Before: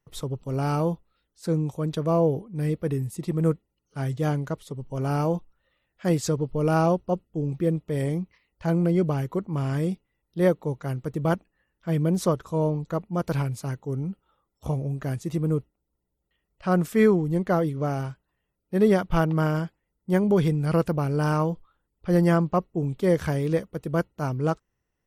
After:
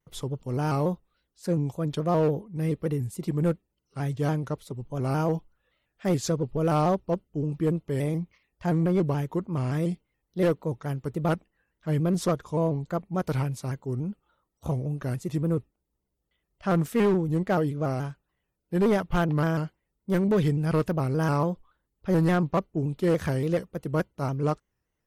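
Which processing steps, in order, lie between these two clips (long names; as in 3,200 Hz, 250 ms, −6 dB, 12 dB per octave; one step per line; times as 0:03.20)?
harmonic generator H 3 −27 dB, 6 −28 dB, 8 −30 dB, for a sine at −8.5 dBFS
gain into a clipping stage and back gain 17.5 dB
pitch modulation by a square or saw wave square 3.5 Hz, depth 100 cents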